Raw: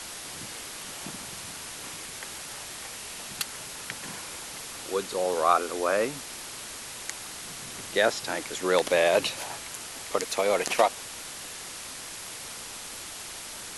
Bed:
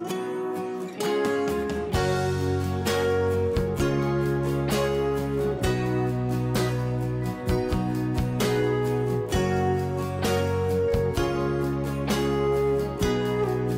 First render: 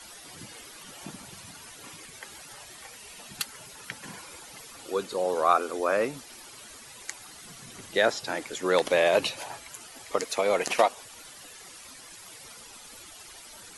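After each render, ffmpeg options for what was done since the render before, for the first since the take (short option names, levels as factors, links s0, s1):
-af "afftdn=nr=12:nf=-40"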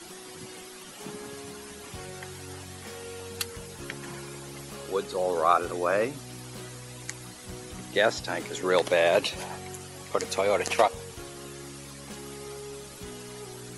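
-filter_complex "[1:a]volume=0.126[s0];[0:a][s0]amix=inputs=2:normalize=0"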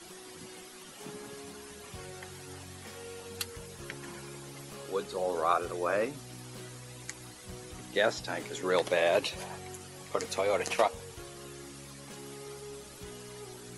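-af "flanger=delay=1.7:depth=5.9:regen=-67:speed=0.53:shape=sinusoidal"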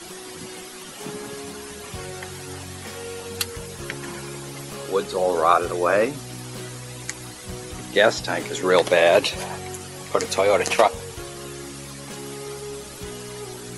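-af "volume=3.35,alimiter=limit=0.708:level=0:latency=1"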